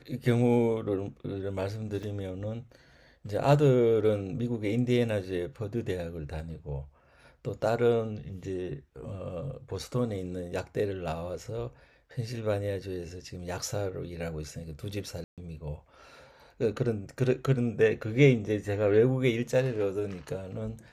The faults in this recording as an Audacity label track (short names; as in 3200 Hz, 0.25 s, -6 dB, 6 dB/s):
2.030000	2.030000	gap 2.7 ms
15.240000	15.380000	gap 0.137 s